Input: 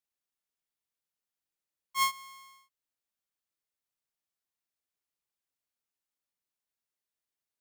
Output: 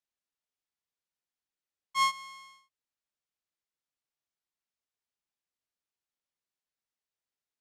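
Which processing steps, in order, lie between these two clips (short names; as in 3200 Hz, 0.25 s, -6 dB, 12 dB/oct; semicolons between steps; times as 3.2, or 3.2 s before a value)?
sample leveller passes 1; LPF 7300 Hz 12 dB/oct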